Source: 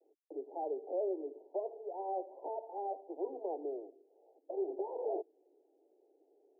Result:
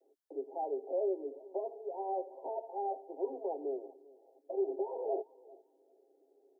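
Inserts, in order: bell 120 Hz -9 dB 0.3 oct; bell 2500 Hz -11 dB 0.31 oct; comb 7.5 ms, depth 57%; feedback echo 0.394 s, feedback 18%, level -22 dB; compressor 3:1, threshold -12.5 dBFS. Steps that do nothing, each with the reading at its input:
bell 120 Hz: input band starts at 250 Hz; bell 2500 Hz: input band ends at 1000 Hz; compressor, threshold -12.5 dBFS: input peak -24.0 dBFS

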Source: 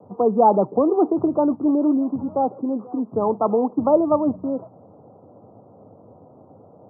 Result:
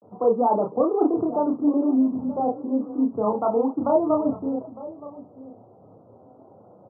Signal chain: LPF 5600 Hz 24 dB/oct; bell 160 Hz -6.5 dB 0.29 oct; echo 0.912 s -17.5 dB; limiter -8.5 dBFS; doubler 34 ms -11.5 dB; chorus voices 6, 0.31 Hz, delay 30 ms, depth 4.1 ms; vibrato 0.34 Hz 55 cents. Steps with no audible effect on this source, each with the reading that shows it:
LPF 5600 Hz: input band ends at 1400 Hz

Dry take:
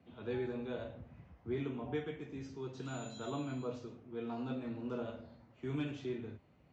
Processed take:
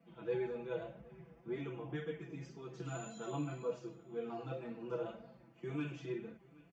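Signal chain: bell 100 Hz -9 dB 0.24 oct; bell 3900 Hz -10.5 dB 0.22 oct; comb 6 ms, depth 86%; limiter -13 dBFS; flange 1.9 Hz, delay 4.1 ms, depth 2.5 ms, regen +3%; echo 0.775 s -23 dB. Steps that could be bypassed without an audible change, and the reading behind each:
limiter -13 dBFS: input peak -24.0 dBFS

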